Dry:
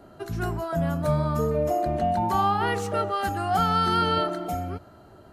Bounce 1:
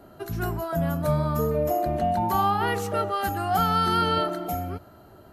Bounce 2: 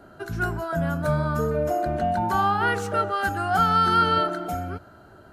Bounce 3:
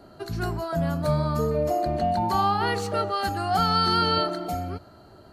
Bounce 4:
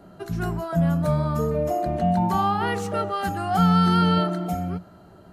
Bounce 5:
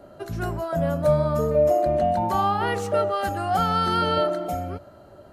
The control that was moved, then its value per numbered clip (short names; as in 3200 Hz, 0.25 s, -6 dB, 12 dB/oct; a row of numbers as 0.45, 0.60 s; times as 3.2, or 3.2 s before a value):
bell, frequency: 12000, 1500, 4400, 180, 570 Hz